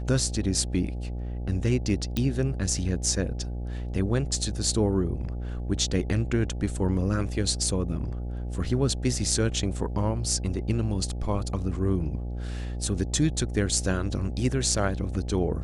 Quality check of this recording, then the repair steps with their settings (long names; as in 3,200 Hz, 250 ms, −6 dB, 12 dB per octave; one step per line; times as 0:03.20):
mains buzz 60 Hz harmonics 14 −32 dBFS
0:02.17: click −13 dBFS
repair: click removal
hum removal 60 Hz, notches 14